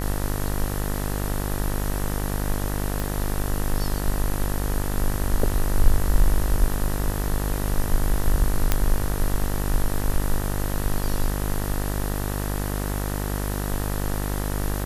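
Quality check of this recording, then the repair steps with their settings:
buzz 50 Hz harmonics 39 -27 dBFS
3 pop
8.72 pop -4 dBFS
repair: de-click; de-hum 50 Hz, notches 39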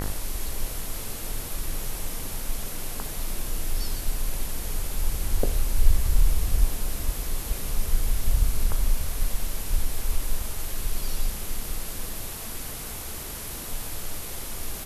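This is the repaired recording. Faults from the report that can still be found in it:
none

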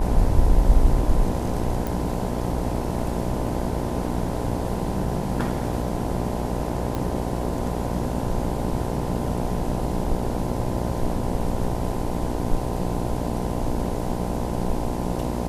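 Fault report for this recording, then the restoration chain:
buzz 60 Hz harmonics 17 -28 dBFS
1.87 pop
6.95 pop -14 dBFS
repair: de-click; de-hum 60 Hz, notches 17

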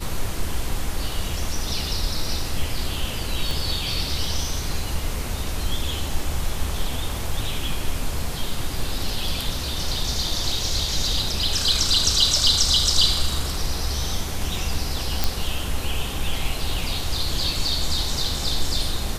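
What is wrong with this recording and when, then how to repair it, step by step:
3.51 pop
15.24 pop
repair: de-click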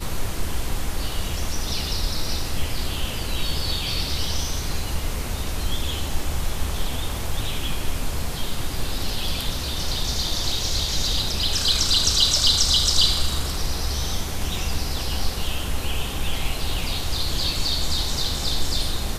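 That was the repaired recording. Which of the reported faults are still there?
3.51 pop

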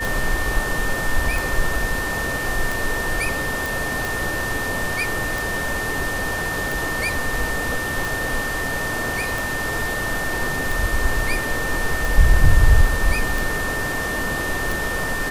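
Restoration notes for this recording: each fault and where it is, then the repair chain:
tick 45 rpm
tone 1800 Hz -25 dBFS
3.66 pop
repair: de-click; notch 1800 Hz, Q 30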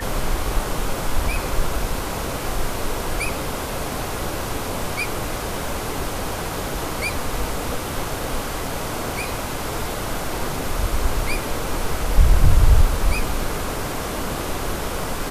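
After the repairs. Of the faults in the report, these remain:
none

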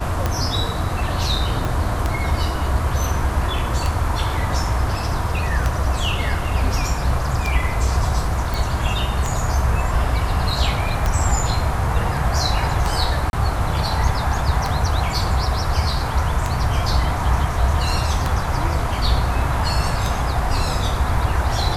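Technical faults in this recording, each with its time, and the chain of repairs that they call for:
tick 33 1/3 rpm -7 dBFS
1.65 pop
8.54 pop
13.3–13.33 gap 31 ms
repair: de-click; interpolate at 13.3, 31 ms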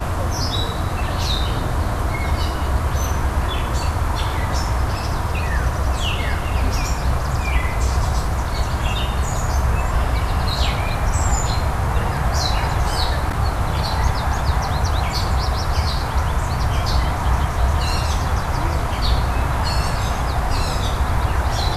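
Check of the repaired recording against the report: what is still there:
1.65 pop

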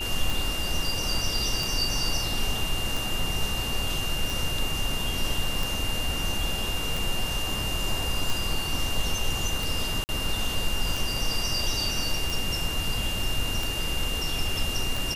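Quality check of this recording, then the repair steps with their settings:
tick 45 rpm
tone 2800 Hz -31 dBFS
10.04–10.09 gap 49 ms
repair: de-click; notch 2800 Hz, Q 30; interpolate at 10.04, 49 ms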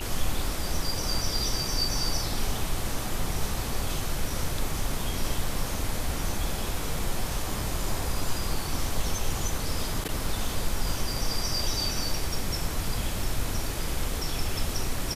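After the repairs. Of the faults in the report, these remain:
none

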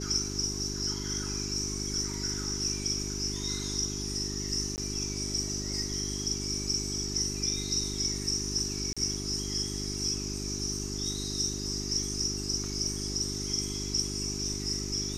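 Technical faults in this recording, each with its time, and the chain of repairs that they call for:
hum 50 Hz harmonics 8 -37 dBFS
4.76–4.78 gap 19 ms
8.93–8.97 gap 36 ms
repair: de-hum 50 Hz, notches 8; interpolate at 4.76, 19 ms; interpolate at 8.93, 36 ms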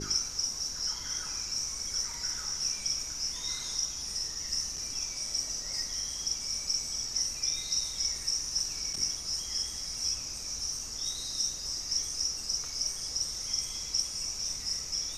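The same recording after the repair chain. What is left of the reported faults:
none

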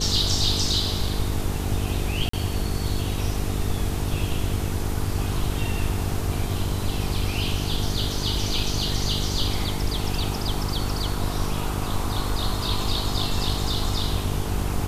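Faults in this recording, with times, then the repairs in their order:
buzz 50 Hz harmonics 9 -29 dBFS
2.29–2.33 gap 44 ms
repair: de-hum 50 Hz, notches 9; interpolate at 2.29, 44 ms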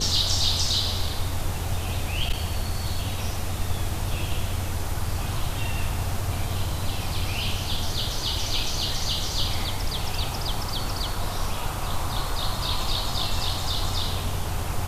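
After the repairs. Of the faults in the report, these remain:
none

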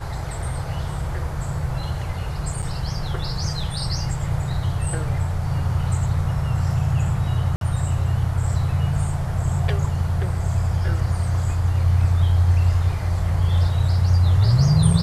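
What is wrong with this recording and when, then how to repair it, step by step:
2.62–2.63 gap 6.4 ms
7.56–7.61 gap 52 ms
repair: interpolate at 2.62, 6.4 ms; interpolate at 7.56, 52 ms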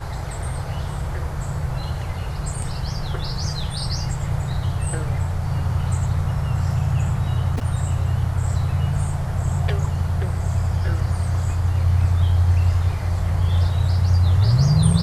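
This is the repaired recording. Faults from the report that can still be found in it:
none

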